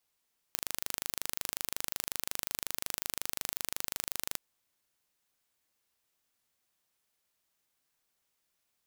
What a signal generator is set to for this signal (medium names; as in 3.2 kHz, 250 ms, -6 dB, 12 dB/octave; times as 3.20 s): pulse train 25.5 per s, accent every 0, -6 dBFS 3.81 s